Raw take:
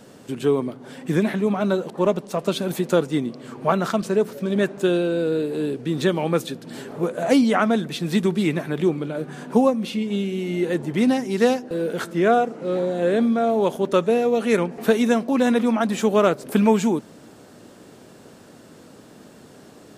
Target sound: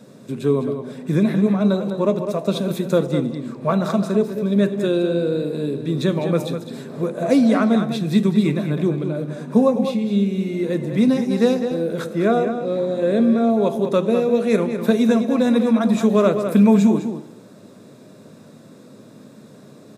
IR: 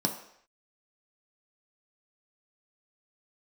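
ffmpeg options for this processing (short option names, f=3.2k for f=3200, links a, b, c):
-filter_complex "[0:a]asplit=2[a][b];[b]adelay=204.1,volume=-8dB,highshelf=f=4k:g=-4.59[c];[a][c]amix=inputs=2:normalize=0,asplit=2[d][e];[1:a]atrim=start_sample=2205,asetrate=30429,aresample=44100[f];[e][f]afir=irnorm=-1:irlink=0,volume=-12.5dB[g];[d][g]amix=inputs=2:normalize=0,volume=-5dB"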